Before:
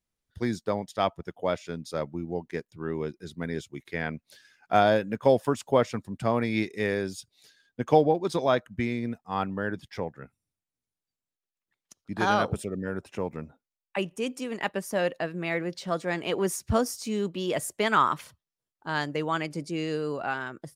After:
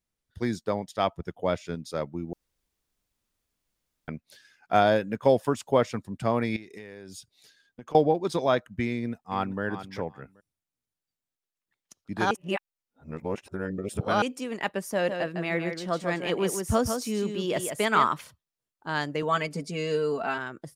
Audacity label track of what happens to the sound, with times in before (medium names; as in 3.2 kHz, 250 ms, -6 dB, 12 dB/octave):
1.160000	1.750000	bass shelf 180 Hz +6.5 dB
2.330000	4.080000	room tone
6.560000	7.950000	compression 20:1, threshold -38 dBFS
8.920000	9.620000	echo throw 390 ms, feedback 15%, level -11.5 dB
12.310000	14.220000	reverse
14.920000	18.070000	delay 155 ms -6.5 dB
19.220000	20.380000	comb 4.5 ms, depth 84%